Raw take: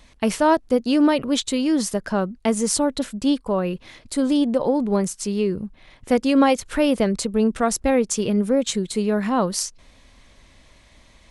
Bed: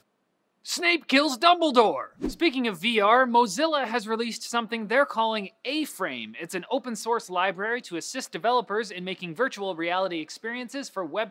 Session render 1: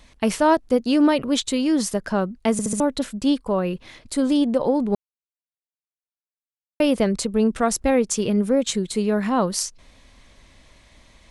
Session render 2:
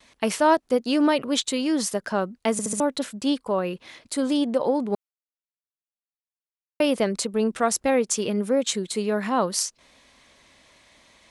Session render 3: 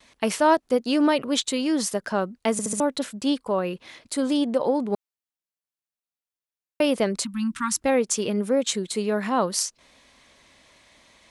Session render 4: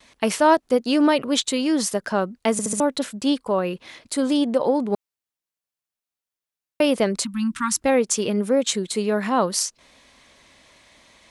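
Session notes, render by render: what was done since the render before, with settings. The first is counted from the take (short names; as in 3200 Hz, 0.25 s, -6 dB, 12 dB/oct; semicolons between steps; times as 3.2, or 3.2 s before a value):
2.52 stutter in place 0.07 s, 4 plays; 4.95–6.8 mute
HPF 350 Hz 6 dB/oct; gate with hold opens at -47 dBFS
7.24–7.82 Chebyshev band-stop 310–940 Hz, order 5
gain +2.5 dB; limiter -3 dBFS, peak gain reduction 1.5 dB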